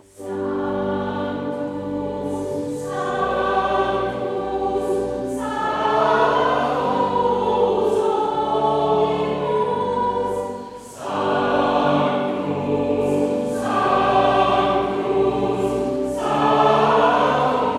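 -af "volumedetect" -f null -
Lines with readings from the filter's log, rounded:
mean_volume: -20.0 dB
max_volume: -4.7 dB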